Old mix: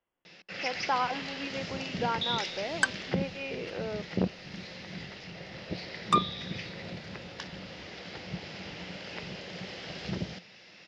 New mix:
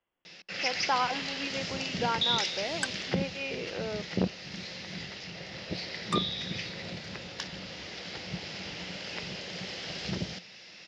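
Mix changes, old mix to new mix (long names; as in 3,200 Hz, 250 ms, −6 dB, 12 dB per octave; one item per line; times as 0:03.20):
second sound −9.5 dB
master: add high-shelf EQ 3,800 Hz +10 dB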